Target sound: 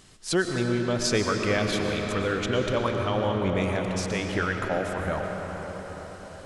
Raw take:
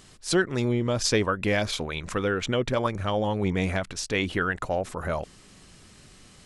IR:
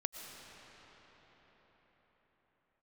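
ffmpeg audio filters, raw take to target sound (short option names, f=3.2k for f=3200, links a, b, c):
-filter_complex "[0:a]asettb=1/sr,asplit=3[a][b][c];[a]atrim=end=3.764[d];[b]atrim=start=3.76:end=4.3,asetpts=PTS-STARTPTS,afade=t=in:d=0.004:c=qsin,afade=t=out:st=0.536:d=0.004:c=qsin,acompressor=threshold=-31dB:ratio=1.5[e];[c]atrim=start=4.296[f];[d][e]acrossfade=d=0.004:c1=hsin:c2=qsin[g];[g][f]acrossfade=d=0.004:c1=qsin:c2=hsin[h];[1:a]atrim=start_sample=2205,asetrate=43659,aresample=44100[i];[h][i]afir=irnorm=-1:irlink=0"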